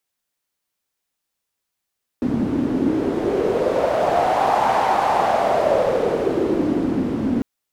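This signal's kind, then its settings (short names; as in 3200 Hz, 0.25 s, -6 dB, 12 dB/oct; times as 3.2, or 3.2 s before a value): wind-like swept noise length 5.20 s, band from 250 Hz, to 820 Hz, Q 4.3, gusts 1, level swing 3 dB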